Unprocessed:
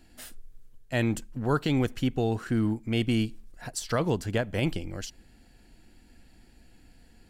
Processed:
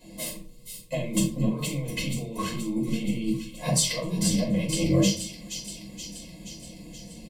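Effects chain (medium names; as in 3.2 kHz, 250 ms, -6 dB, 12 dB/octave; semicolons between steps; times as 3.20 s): high-pass 170 Hz 12 dB/octave; resonant low shelf 480 Hz +11 dB, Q 1.5; comb 1.9 ms, depth 99%; dynamic bell 2.5 kHz, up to +5 dB, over -43 dBFS, Q 1; compressor with a negative ratio -28 dBFS, ratio -1; flange 1.3 Hz, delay 9.6 ms, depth 6.2 ms, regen +80%; static phaser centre 390 Hz, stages 6; small resonant body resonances 1.1/2.1 kHz, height 14 dB, ringing for 60 ms; on a send: feedback echo behind a high-pass 476 ms, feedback 64%, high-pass 3.1 kHz, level -6 dB; on the sum: simulated room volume 200 m³, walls furnished, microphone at 5 m; trim -2 dB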